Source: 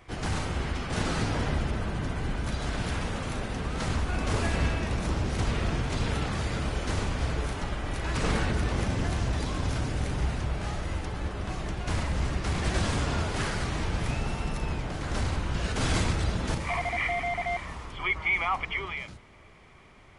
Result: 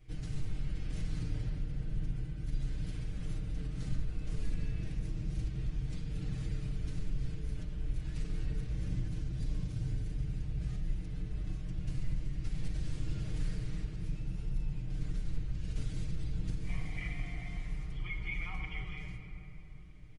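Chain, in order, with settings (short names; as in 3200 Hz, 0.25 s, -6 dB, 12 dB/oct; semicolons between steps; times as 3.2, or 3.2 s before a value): passive tone stack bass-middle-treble 10-0-1; comb 6.5 ms, depth 96%; compressor, threshold -41 dBFS, peak gain reduction 13.5 dB; reverb RT60 3.2 s, pre-delay 7 ms, DRR 2.5 dB; gain +7 dB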